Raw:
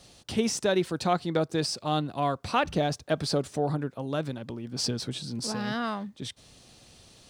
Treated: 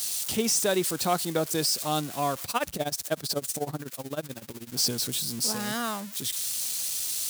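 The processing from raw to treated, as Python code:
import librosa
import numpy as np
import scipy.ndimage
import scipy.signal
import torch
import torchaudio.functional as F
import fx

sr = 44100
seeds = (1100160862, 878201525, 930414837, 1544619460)

y = x + 0.5 * 10.0 ** (-26.0 / 20.0) * np.diff(np.sign(x), prepend=np.sign(x[:1]))
y = fx.low_shelf(y, sr, hz=170.0, db=-5.5)
y = fx.tremolo(y, sr, hz=16.0, depth=0.89, at=(2.44, 4.72))
y = fx.dynamic_eq(y, sr, hz=8500.0, q=0.77, threshold_db=-42.0, ratio=4.0, max_db=5)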